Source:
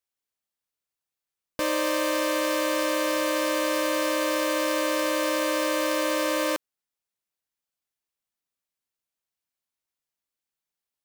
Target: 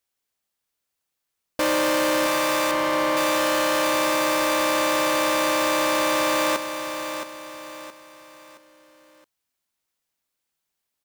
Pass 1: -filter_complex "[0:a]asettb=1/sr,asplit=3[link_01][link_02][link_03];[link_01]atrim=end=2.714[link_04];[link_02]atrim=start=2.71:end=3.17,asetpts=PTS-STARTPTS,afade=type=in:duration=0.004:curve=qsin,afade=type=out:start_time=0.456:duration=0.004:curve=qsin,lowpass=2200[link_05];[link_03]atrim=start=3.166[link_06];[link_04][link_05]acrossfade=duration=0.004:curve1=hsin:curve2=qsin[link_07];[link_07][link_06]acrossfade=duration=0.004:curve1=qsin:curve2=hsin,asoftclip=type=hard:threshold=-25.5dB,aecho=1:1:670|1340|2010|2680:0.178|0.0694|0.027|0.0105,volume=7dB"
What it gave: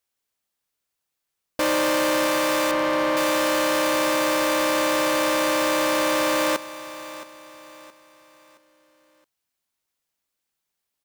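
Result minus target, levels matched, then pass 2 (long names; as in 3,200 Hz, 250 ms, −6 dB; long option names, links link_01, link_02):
echo-to-direct −6.5 dB
-filter_complex "[0:a]asettb=1/sr,asplit=3[link_01][link_02][link_03];[link_01]atrim=end=2.714[link_04];[link_02]atrim=start=2.71:end=3.17,asetpts=PTS-STARTPTS,afade=type=in:duration=0.004:curve=qsin,afade=type=out:start_time=0.456:duration=0.004:curve=qsin,lowpass=2200[link_05];[link_03]atrim=start=3.166[link_06];[link_04][link_05]acrossfade=duration=0.004:curve1=hsin:curve2=qsin[link_07];[link_07][link_06]acrossfade=duration=0.004:curve1=qsin:curve2=hsin,asoftclip=type=hard:threshold=-25.5dB,aecho=1:1:670|1340|2010|2680:0.376|0.147|0.0572|0.0223,volume=7dB"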